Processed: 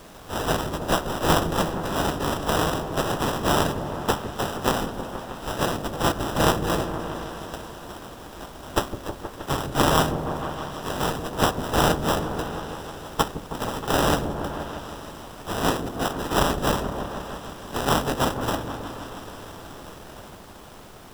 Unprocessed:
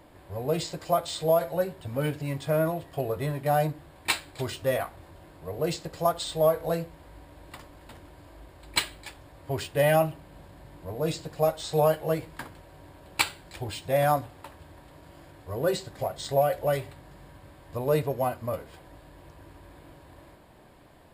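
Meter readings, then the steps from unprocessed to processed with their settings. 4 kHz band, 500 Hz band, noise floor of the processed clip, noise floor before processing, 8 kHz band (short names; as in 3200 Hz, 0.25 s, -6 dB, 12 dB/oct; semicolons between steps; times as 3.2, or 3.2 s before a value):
+6.5 dB, -0.5 dB, -43 dBFS, -53 dBFS, +6.5 dB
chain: spectral contrast lowered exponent 0.18; LPF 8600 Hz 24 dB/oct; in parallel at +3 dB: compressor, threshold -35 dBFS, peak gain reduction 15 dB; on the sum: sample-and-hold 20×; added noise pink -52 dBFS; repeats that get brighter 0.158 s, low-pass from 400 Hz, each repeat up 1 oct, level -6 dB; gain +2 dB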